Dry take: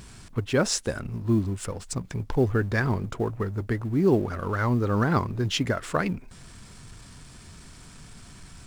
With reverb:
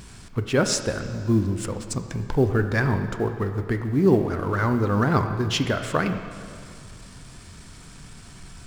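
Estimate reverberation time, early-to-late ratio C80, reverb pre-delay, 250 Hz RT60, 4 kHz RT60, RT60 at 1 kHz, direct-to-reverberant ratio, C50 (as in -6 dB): 2.2 s, 9.0 dB, 7 ms, 2.2 s, 2.1 s, 2.2 s, 7.0 dB, 8.0 dB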